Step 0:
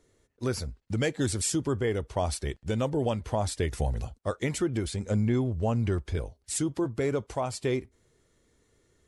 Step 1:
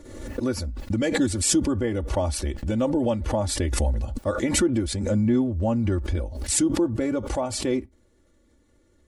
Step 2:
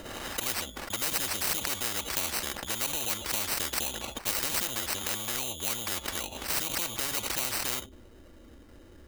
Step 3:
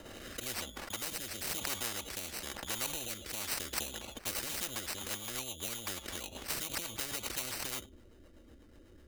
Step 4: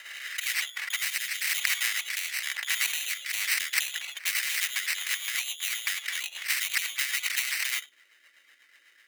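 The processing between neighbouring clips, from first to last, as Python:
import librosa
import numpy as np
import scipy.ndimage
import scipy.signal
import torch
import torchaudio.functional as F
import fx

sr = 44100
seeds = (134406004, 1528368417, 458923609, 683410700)

y1 = fx.tilt_shelf(x, sr, db=4.0, hz=910.0)
y1 = y1 + 0.79 * np.pad(y1, (int(3.5 * sr / 1000.0), 0))[:len(y1)]
y1 = fx.pre_swell(y1, sr, db_per_s=51.0)
y2 = fx.dynamic_eq(y1, sr, hz=510.0, q=0.86, threshold_db=-36.0, ratio=4.0, max_db=7)
y2 = fx.sample_hold(y2, sr, seeds[0], rate_hz=3400.0, jitter_pct=0)
y2 = fx.spectral_comp(y2, sr, ratio=10.0)
y3 = fx.rotary_switch(y2, sr, hz=1.0, then_hz=8.0, switch_at_s=3.26)
y3 = y3 * 10.0 ** (-4.0 / 20.0)
y4 = fx.highpass_res(y3, sr, hz=2000.0, q=4.2)
y4 = y4 * 10.0 ** (6.5 / 20.0)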